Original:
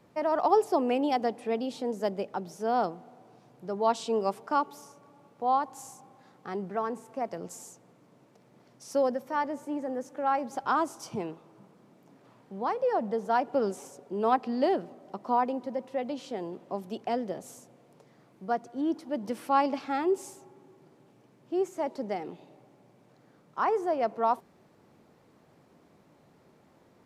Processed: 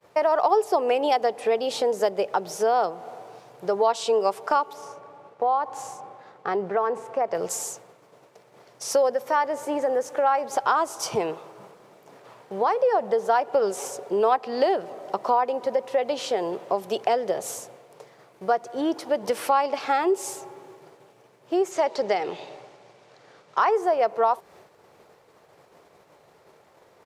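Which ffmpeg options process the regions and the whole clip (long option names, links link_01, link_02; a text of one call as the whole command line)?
ffmpeg -i in.wav -filter_complex "[0:a]asettb=1/sr,asplit=3[link_01][link_02][link_03];[link_01]atrim=end=4.734[link_04];[link_02]atrim=start=4.73:end=7.35,asetpts=PTS-STARTPTS,afade=type=in:duration=0.004:curve=qsin,afade=type=out:start_time=2.616:duration=0.004:curve=qsin,aemphasis=mode=reproduction:type=75kf,acompressor=threshold=-34dB:ratio=1.5:attack=3.2:release=140:knee=1:detection=peak[link_05];[link_03]atrim=start=7.346[link_06];[link_04][link_05]acrossfade=duration=0.004:curve1=hsin:curve2=qsin[link_07];[link_07][link_06]acrossfade=duration=0.004:curve1=qsin:curve2=hsin,asettb=1/sr,asplit=3[link_08][link_09][link_10];[link_08]atrim=end=21.714[link_11];[link_09]atrim=start=21.71:end=23.71,asetpts=PTS-STARTPTS,afade=type=in:duration=0.004:curve=qsin,afade=type=out:start_time=1.996:duration=0.004:curve=qsin,lowpass=5400,highshelf=frequency=2400:gain=9[link_12];[link_10]atrim=start=23.706[link_13];[link_11][link_12]acrossfade=duration=0.004:curve1=hsin:curve2=qsin[link_14];[link_14][link_13]acrossfade=duration=0.004:curve1=qsin:curve2=hsin,agate=range=-33dB:threshold=-54dB:ratio=3:detection=peak,firequalizer=gain_entry='entry(110,0);entry(250,-7);entry(420,9)':delay=0.05:min_phase=1,acompressor=threshold=-27dB:ratio=3,volume=6dB" out.wav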